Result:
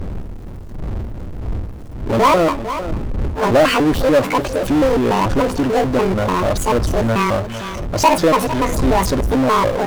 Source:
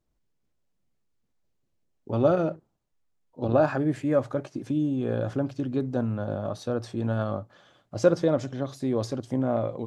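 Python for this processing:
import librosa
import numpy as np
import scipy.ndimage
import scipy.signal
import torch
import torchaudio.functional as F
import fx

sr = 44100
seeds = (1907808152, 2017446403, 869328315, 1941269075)

y = fx.pitch_trill(x, sr, semitones=10.0, every_ms=146)
y = fx.dmg_wind(y, sr, seeds[0], corner_hz=110.0, level_db=-39.0)
y = y + 10.0 ** (-22.0 / 20.0) * np.pad(y, (int(452 * sr / 1000.0), 0))[:len(y)]
y = fx.power_curve(y, sr, exponent=0.5)
y = fx.peak_eq(y, sr, hz=140.0, db=-6.0, octaves=1.2)
y = y * librosa.db_to_amplitude(5.0)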